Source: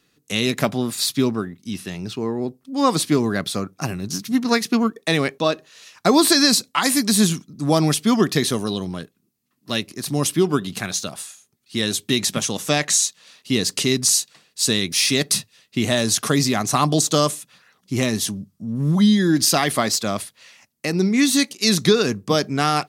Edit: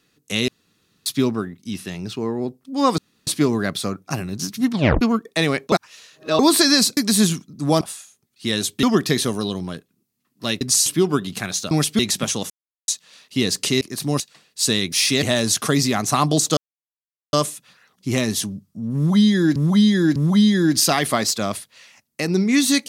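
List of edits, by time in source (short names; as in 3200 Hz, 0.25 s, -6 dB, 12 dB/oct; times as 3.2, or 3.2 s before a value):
0.48–1.06 room tone
2.98 insert room tone 0.29 s
4.42 tape stop 0.30 s
5.43–6.1 reverse
6.68–6.97 cut
7.81–8.09 swap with 11.11–12.13
9.87–10.26 swap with 13.95–14.2
12.64–13.02 mute
15.23–15.84 cut
17.18 insert silence 0.76 s
18.81–19.41 loop, 3 plays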